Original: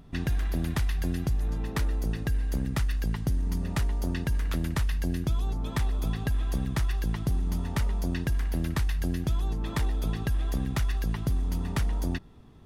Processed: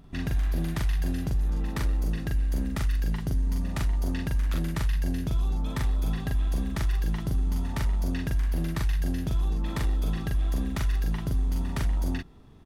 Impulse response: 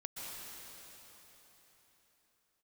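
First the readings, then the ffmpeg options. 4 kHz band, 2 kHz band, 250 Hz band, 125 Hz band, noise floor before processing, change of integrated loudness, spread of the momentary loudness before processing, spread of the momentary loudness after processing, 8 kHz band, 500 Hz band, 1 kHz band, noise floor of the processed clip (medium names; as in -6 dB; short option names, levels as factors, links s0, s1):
-1.0 dB, -1.0 dB, 0.0 dB, +0.5 dB, -37 dBFS, +1.0 dB, 1 LU, 1 LU, -1.0 dB, -1.0 dB, -1.0 dB, -33 dBFS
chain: -filter_complex "[0:a]asplit=2[s0][s1];[s1]asoftclip=type=hard:threshold=0.0447,volume=0.562[s2];[s0][s2]amix=inputs=2:normalize=0,asplit=2[s3][s4];[s4]adelay=42,volume=0.794[s5];[s3][s5]amix=inputs=2:normalize=0,volume=0.531"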